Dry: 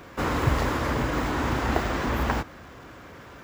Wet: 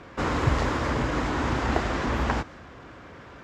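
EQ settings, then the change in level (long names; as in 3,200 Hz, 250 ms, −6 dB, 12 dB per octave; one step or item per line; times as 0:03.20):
dynamic equaliser 7,200 Hz, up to +5 dB, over −55 dBFS, Q 0.86
high-frequency loss of the air 77 metres
0.0 dB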